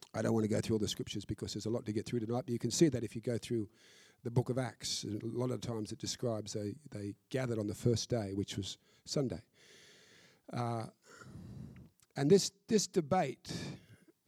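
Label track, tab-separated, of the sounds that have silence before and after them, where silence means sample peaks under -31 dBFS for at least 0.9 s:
10.550000	10.850000	sound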